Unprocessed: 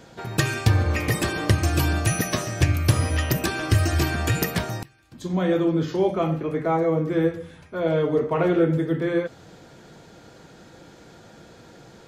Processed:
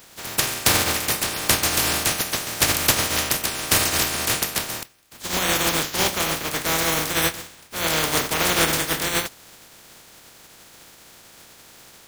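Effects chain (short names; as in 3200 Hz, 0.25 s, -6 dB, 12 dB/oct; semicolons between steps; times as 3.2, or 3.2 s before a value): spectral contrast lowered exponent 0.21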